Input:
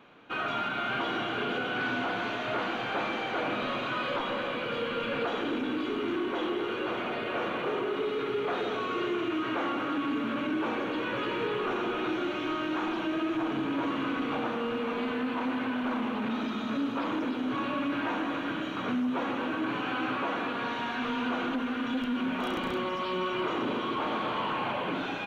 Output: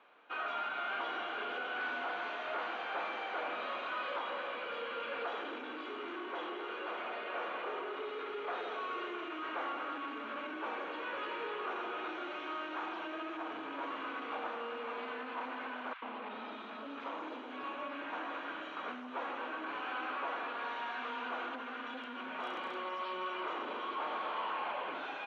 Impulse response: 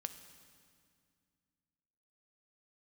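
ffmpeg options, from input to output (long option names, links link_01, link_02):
-filter_complex "[0:a]highpass=610,aemphasis=mode=reproduction:type=75fm,asettb=1/sr,asplit=3[link_01][link_02][link_03];[link_01]atrim=end=15.934[link_04];[link_02]atrim=start=15.93:end=18.13,asetpts=PTS-STARTPTS,afade=type=in:duration=0.004:curve=qsin,afade=type=out:start_time=2.196:duration=0.004:curve=qsin,acrossover=split=1400|5200[link_05][link_06][link_07];[link_05]adelay=90[link_08];[link_07]adelay=590[link_09];[link_08][link_06][link_09]amix=inputs=3:normalize=0,atrim=end_sample=97020[link_10];[link_03]atrim=start=18.126[link_11];[link_04][link_10]acrossfade=duration=0.004:curve1=hsin:curve2=qsin[link_12];[link_12][link_11]acrossfade=duration=0.004:curve1=qsin:curve2=hsin,volume=-4.5dB"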